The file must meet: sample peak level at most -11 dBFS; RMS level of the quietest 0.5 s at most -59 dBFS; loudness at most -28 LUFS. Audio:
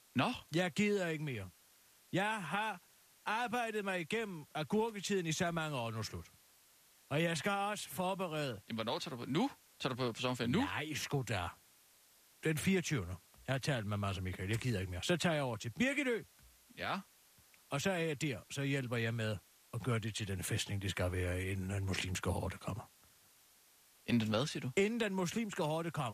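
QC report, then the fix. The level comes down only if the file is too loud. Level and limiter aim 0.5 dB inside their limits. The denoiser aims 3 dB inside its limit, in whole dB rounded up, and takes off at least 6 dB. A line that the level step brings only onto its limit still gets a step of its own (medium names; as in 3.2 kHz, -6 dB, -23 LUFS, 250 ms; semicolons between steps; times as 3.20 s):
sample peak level -20.5 dBFS: pass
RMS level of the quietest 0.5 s -67 dBFS: pass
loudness -37.5 LUFS: pass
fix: none needed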